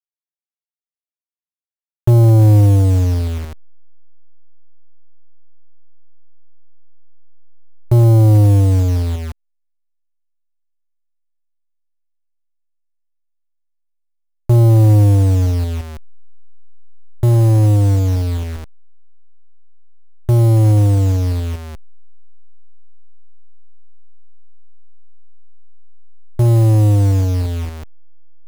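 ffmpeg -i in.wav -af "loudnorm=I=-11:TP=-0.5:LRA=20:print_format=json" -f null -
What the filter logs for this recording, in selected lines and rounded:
"input_i" : "-13.4",
"input_tp" : "-5.7",
"input_lra" : "10.1",
"input_thresh" : "-24.5",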